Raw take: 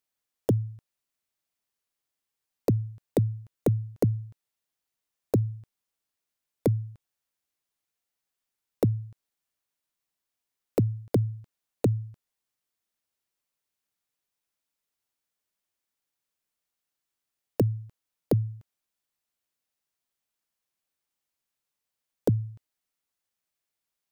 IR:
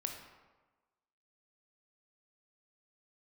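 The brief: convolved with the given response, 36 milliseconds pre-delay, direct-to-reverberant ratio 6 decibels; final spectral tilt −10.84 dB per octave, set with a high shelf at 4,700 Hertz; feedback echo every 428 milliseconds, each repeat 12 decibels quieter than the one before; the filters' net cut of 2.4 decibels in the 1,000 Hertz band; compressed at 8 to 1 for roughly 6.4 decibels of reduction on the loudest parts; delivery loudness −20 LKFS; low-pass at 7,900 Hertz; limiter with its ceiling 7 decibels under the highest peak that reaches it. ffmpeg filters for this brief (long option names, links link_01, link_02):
-filter_complex "[0:a]lowpass=7900,equalizer=frequency=1000:width_type=o:gain=-4,highshelf=frequency=4700:gain=8,acompressor=threshold=-25dB:ratio=8,alimiter=limit=-20dB:level=0:latency=1,aecho=1:1:428|856|1284:0.251|0.0628|0.0157,asplit=2[link_01][link_02];[1:a]atrim=start_sample=2205,adelay=36[link_03];[link_02][link_03]afir=irnorm=-1:irlink=0,volume=-6dB[link_04];[link_01][link_04]amix=inputs=2:normalize=0,volume=15dB"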